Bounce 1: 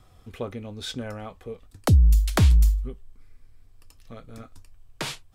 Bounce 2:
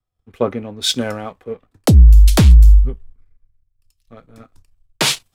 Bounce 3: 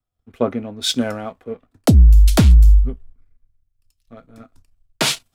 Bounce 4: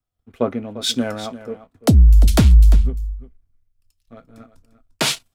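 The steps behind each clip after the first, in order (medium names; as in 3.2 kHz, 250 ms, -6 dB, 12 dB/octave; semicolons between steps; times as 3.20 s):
waveshaping leveller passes 1; loudness maximiser +15 dB; three bands expanded up and down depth 100%; trim -9 dB
small resonant body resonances 250/660/1400 Hz, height 6 dB; trim -2.5 dB
delay 347 ms -14.5 dB; trim -1 dB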